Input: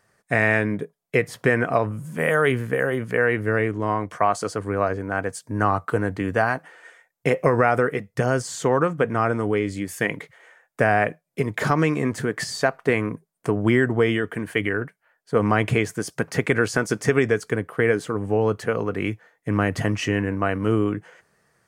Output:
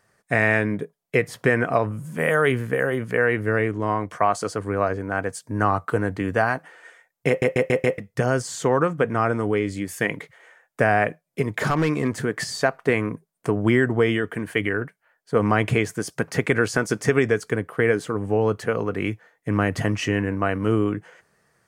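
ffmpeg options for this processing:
-filter_complex "[0:a]asettb=1/sr,asplit=3[a][b][c];[a]atrim=end=11.454[d];[b]atrim=start=11.45:end=12.09,asetpts=PTS-STARTPTS,afade=t=in:d=0.004:c=qsin,afade=t=out:st=0.636:d=0.004:c=qsin,asoftclip=type=hard:threshold=-14.5dB[e];[c]atrim=start=12.086[f];[d][e]acrossfade=d=0.004:c1=hsin:c2=qsin[g];[g][f]acrossfade=d=0.004:c1=qsin:c2=hsin,asplit=6[h][i][j][k][l][m];[h]atrim=end=7.422[n];[i]atrim=start=7.278:end=7.422[o];[j]atrim=start=7.278:end=7.422[p];[k]atrim=start=7.278:end=7.422[q];[l]atrim=start=7.278:end=7.422[r];[m]atrim=start=7.978[s];[n][o]acrossfade=d=0.004:c1=hsin:c2=hsin[t];[t][p]acrossfade=d=0.004:c1=hsin:c2=hsin[u];[u][q]acrossfade=d=0.004:c1=hsin:c2=hsin[v];[v][r]acrossfade=d=0.004:c1=hsin:c2=hsin[w];[w][s]acrossfade=d=0.004:c1=hsin:c2=hsin"

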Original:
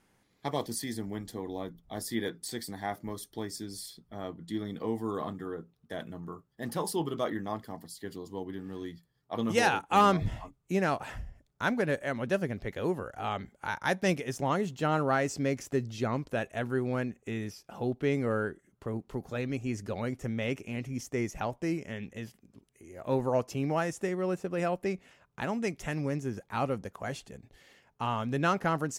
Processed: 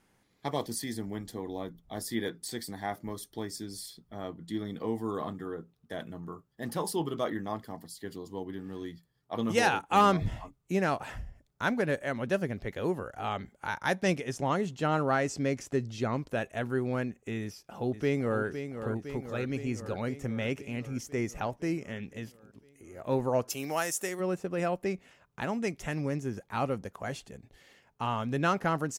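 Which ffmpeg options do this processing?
-filter_complex "[0:a]asettb=1/sr,asplit=3[a][b][c];[a]atrim=end=14.014[d];[b]atrim=start=14.01:end=16.19,asetpts=PTS-STARTPTS,afade=t=in:d=0.004:c=qsin,afade=t=out:st=2.176:d=0.004:c=qsin,lowpass=11k[e];[c]atrim=start=16.186[f];[d][e]acrossfade=d=0.004:c1=hsin:c2=qsin[g];[g][f]acrossfade=d=0.004:c1=qsin:c2=hsin,asplit=2[h][i];[i]afade=t=in:st=17.42:d=0.01,afade=t=out:st=18.43:d=0.01,aecho=0:1:510|1020|1530|2040|2550|3060|3570|4080|4590|5100|5610:0.354813|0.248369|0.173859|0.121701|0.0851907|0.0596335|0.0417434|0.0292204|0.0204543|0.014318|0.0100226[j];[h][j]amix=inputs=2:normalize=0,asplit=3[k][l][m];[k]afade=t=out:st=23.49:d=0.02[n];[l]aemphasis=mode=production:type=riaa,afade=t=in:st=23.49:d=0.02,afade=t=out:st=24.19:d=0.02[o];[m]afade=t=in:st=24.19:d=0.02[p];[n][o][p]amix=inputs=3:normalize=0"

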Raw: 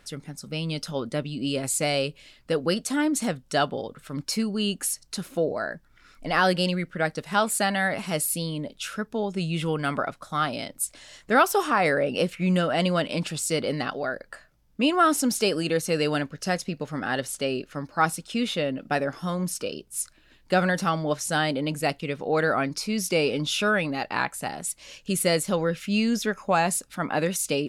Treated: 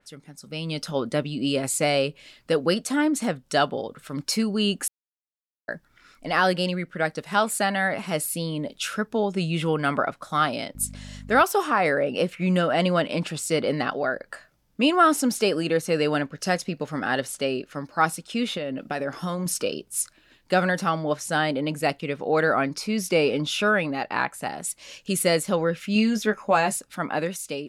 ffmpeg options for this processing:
-filter_complex "[0:a]asettb=1/sr,asplit=3[a][b][c];[a]atrim=end=10.754[d];[b]atrim=start=10.75:end=11.43,asetpts=PTS-STARTPTS,afade=t=in:d=0.004:c=qsin,afade=t=out:st=0.676:d=0.004:c=qsin,aeval=exprs='val(0)+0.02*(sin(2*PI*50*n/s)+sin(2*PI*2*50*n/s)/2+sin(2*PI*3*50*n/s)/3+sin(2*PI*4*50*n/s)/4+sin(2*PI*5*50*n/s)/5)':c=same[e];[c]atrim=start=11.426[f];[d][e]acrossfade=d=0.004:c1=hsin:c2=qsin[g];[g][f]acrossfade=d=0.004:c1=qsin:c2=hsin,asettb=1/sr,asplit=3[h][i][j];[h]atrim=end=18.574[k];[i]atrim=start=18.57:end=19.46,asetpts=PTS-STARTPTS,afade=t=in:d=0.004:c=qsin,afade=t=out:st=0.886:d=0.004:c=qsin,acompressor=threshold=-28dB:ratio=6:attack=3.2:release=140:knee=1:detection=peak[l];[j]atrim=start=19.456[m];[k][l]acrossfade=d=0.004:c1=hsin:c2=qsin[n];[n][m]acrossfade=d=0.004:c1=qsin:c2=hsin,asettb=1/sr,asplit=3[o][p][q];[o]atrim=end=25.944[r];[p]atrim=start=25.94:end=26.76,asetpts=PTS-STARTPTS,afade=t=in:d=0.004:c=qsin,afade=t=out:st=0.816:d=0.004:c=qsin,asplit=2[s][t];[t]adelay=14,volume=-6dB[u];[s][u]amix=inputs=2:normalize=0,atrim=end_sample=36162[v];[q]atrim=start=26.756[w];[r][v]acrossfade=d=0.004:c1=hsin:c2=qsin[x];[x][w]acrossfade=d=0.004:c1=qsin:c2=hsin,asplit=3[y][z][aa];[y]atrim=end=4.88,asetpts=PTS-STARTPTS,afade=t=out:st=4.876:d=0.004:c=hsin[ab];[z]atrim=start=4.88:end=5.68,asetpts=PTS-STARTPTS,volume=0[ac];[aa]atrim=start=5.68,asetpts=PTS-STARTPTS,afade=t=in:d=0.004:c=hsin[ad];[ab][ac][ad]concat=n=3:v=0:a=1,lowshelf=f=89:g=-10.5,dynaudnorm=f=190:g=7:m=11.5dB,adynamicequalizer=threshold=0.0224:dfrequency=2900:dqfactor=0.7:tfrequency=2900:tqfactor=0.7:attack=5:release=100:ratio=0.375:range=3.5:mode=cutabove:tftype=highshelf,volume=-6dB"

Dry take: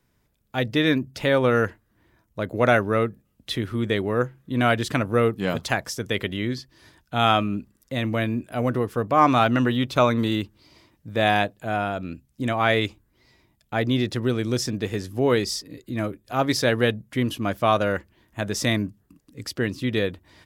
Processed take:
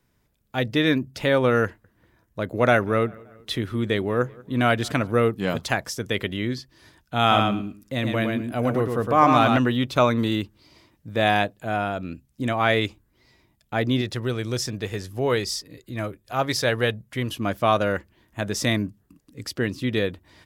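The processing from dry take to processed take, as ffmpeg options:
-filter_complex "[0:a]asettb=1/sr,asplit=3[a][b][c];[a]atrim=end=1.654[d];[b]atrim=start=1.65:end=5.12,asetpts=PTS-STARTPTS,afade=t=in:d=0.004:c=qsin,afade=t=out:st=3.466:d=0.004:c=qsin,asplit=2[e][f];[f]adelay=191,lowpass=f=3.2k:p=1,volume=-24dB,asplit=2[g][h];[h]adelay=191,lowpass=f=3.2k:p=1,volume=0.54,asplit=2[i][j];[j]adelay=191,lowpass=f=3.2k:p=1,volume=0.54[k];[e][g][i][k]amix=inputs=4:normalize=0,atrim=end_sample=153027[l];[c]atrim=start=5.116[m];[d][l]acrossfade=d=0.004:c1=hsin:c2=qsin[n];[n][m]acrossfade=d=0.004:c1=qsin:c2=hsin,asettb=1/sr,asplit=3[o][p][q];[o]atrim=end=7.204[r];[p]atrim=start=7.2:end=9.58,asetpts=PTS-STARTPTS,afade=t=in:d=0.004:c=qsin,afade=t=out:st=2.376:d=0.004:c=qsin,aecho=1:1:111|222|333:0.596|0.0953|0.0152,atrim=end_sample=104958[s];[q]atrim=start=9.576[t];[r][s]acrossfade=d=0.004:c1=hsin:c2=qsin[u];[u][t]acrossfade=d=0.004:c1=qsin:c2=hsin,asettb=1/sr,asplit=3[v][w][x];[v]atrim=end=14.014[y];[w]atrim=start=14.01:end=17.4,asetpts=PTS-STARTPTS,afade=t=in:d=0.004:c=qsin,afade=t=out:st=3.386:d=0.004:c=qsin,equalizer=f=260:t=o:w=1.1:g=-6.5[z];[x]atrim=start=17.396[aa];[y][z]acrossfade=d=0.004:c1=hsin:c2=qsin[ab];[ab][aa]acrossfade=d=0.004:c1=qsin:c2=hsin"

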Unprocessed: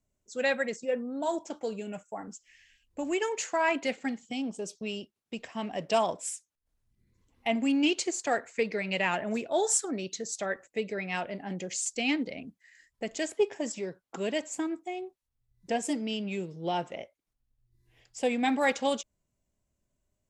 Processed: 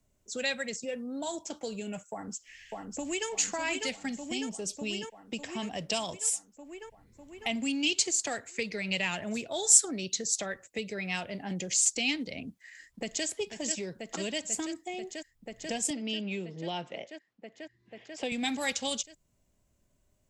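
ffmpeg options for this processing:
-filter_complex "[0:a]asplit=2[a][b];[b]afade=t=in:st=2.09:d=0.01,afade=t=out:st=3.29:d=0.01,aecho=0:1:600|1200|1800|2400|3000|3600|4200|4800|5400|6000:0.630957|0.410122|0.266579|0.173277|0.11263|0.0732094|0.0475861|0.030931|0.0201051|0.0130683[c];[a][c]amix=inputs=2:normalize=0,asplit=2[d][e];[e]afade=t=in:st=12.48:d=0.01,afade=t=out:st=13.26:d=0.01,aecho=0:1:490|980|1470|1960|2450|2940|3430|3920|4410|4900|5390|5880:0.421697|0.358442|0.304676|0.258974|0.220128|0.187109|0.159043|0.135186|0.114908|0.0976721|0.0830212|0.0705681[f];[d][f]amix=inputs=2:normalize=0,asettb=1/sr,asplit=3[g][h][i];[g]atrim=end=15.904[j];[h]atrim=start=15.9:end=18.32,asetpts=PTS-STARTPTS,afade=t=in:d=0.004:c=qsin,afade=t=out:st=2.416:d=0.004:c=qsin,highpass=180,lowpass=3.7k[k];[i]atrim=start=18.316[l];[j][k]acrossfade=d=0.004:c1=hsin:c2=qsin[m];[m][l]acrossfade=d=0.004:c1=qsin:c2=hsin,acrossover=split=140|3000[n][o][p];[o]acompressor=threshold=-47dB:ratio=3[q];[n][q][p]amix=inputs=3:normalize=0,volume=7.5dB"

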